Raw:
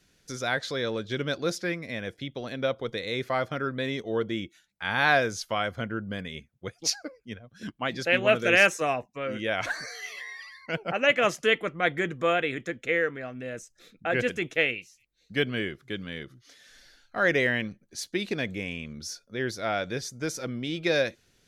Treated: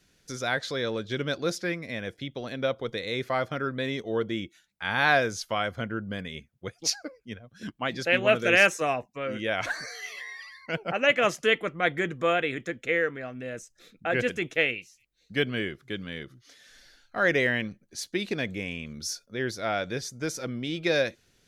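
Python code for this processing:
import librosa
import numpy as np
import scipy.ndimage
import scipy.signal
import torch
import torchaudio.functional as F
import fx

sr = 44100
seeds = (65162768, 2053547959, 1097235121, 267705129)

y = fx.high_shelf(x, sr, hz=4200.0, db=6.5, at=(18.86, 19.26))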